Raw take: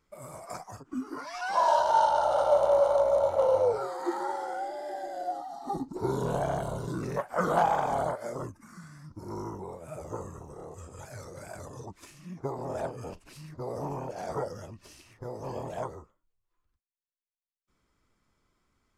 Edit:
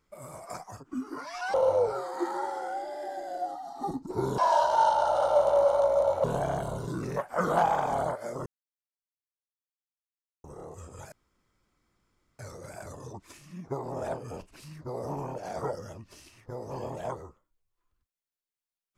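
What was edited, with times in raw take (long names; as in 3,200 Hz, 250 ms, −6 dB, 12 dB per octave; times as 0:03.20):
0:01.54–0:03.40: move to 0:06.24
0:08.46–0:10.44: silence
0:11.12: splice in room tone 1.27 s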